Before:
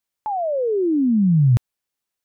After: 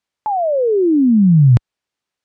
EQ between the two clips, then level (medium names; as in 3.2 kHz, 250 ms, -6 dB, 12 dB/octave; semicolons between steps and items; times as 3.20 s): high-pass 42 Hz 6 dB/octave; distance through air 78 m; +6.0 dB